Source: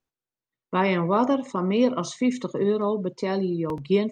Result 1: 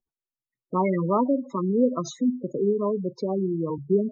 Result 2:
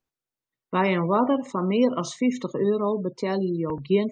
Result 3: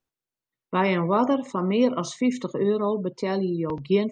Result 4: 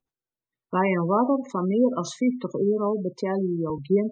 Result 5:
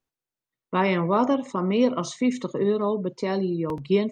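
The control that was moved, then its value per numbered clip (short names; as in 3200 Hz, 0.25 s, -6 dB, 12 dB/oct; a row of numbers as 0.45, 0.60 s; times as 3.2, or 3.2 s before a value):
spectral gate, under each frame's peak: -10, -35, -45, -20, -60 dB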